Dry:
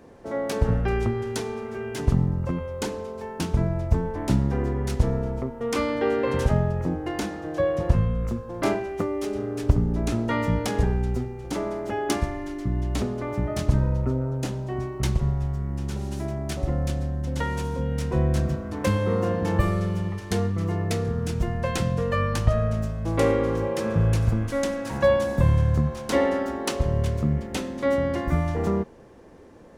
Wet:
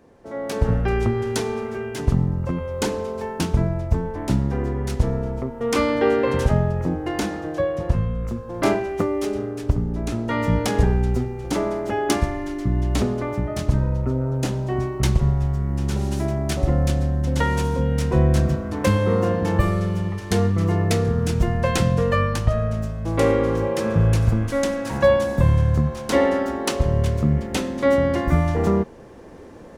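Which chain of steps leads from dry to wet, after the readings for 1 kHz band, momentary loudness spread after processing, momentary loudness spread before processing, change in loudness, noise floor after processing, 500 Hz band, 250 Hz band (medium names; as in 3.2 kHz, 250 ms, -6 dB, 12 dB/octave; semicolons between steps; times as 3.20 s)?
+4.0 dB, 7 LU, 8 LU, +3.5 dB, -33 dBFS, +4.0 dB, +3.5 dB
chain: level rider; trim -4 dB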